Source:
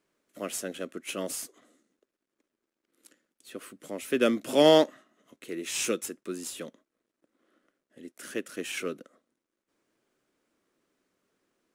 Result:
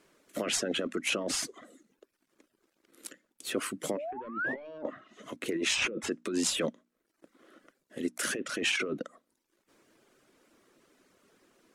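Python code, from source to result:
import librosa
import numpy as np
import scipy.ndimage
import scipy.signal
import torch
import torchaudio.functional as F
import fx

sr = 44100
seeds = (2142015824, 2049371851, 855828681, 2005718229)

y = fx.spec_paint(x, sr, seeds[0], shape='rise', start_s=3.97, length_s=0.71, low_hz=540.0, high_hz=2600.0, level_db=-29.0)
y = fx.env_lowpass_down(y, sr, base_hz=1200.0, full_db=-24.0)
y = 10.0 ** (-18.5 / 20.0) * np.tanh(y / 10.0 ** (-18.5 / 20.0))
y = fx.over_compress(y, sr, threshold_db=-39.0, ratio=-1.0)
y = fx.hum_notches(y, sr, base_hz=60, count=5)
y = fx.dereverb_blind(y, sr, rt60_s=0.63)
y = fx.band_squash(y, sr, depth_pct=70, at=(4.86, 5.46))
y = F.gain(torch.from_numpy(y), 6.5).numpy()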